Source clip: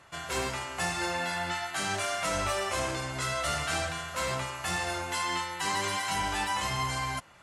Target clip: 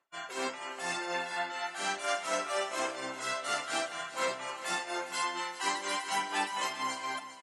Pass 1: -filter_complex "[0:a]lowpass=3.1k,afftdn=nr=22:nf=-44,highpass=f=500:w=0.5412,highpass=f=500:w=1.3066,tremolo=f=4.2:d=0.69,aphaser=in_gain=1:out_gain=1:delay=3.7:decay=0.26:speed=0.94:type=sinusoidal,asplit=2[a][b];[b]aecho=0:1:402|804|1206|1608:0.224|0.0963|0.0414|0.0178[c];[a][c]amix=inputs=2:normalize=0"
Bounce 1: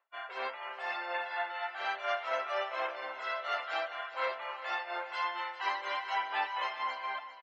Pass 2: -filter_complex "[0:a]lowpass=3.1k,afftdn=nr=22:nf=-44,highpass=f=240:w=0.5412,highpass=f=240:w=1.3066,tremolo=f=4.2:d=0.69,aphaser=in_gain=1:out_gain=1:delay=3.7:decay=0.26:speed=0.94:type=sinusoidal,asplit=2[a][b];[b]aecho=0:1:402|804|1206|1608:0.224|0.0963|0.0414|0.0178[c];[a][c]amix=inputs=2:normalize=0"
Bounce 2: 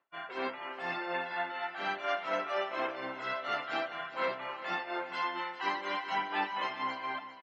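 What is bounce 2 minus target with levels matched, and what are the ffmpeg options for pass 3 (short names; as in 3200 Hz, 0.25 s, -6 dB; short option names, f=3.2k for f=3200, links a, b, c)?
4000 Hz band -4.0 dB
-filter_complex "[0:a]afftdn=nr=22:nf=-44,highpass=f=240:w=0.5412,highpass=f=240:w=1.3066,tremolo=f=4.2:d=0.69,aphaser=in_gain=1:out_gain=1:delay=3.7:decay=0.26:speed=0.94:type=sinusoidal,asplit=2[a][b];[b]aecho=0:1:402|804|1206|1608:0.224|0.0963|0.0414|0.0178[c];[a][c]amix=inputs=2:normalize=0"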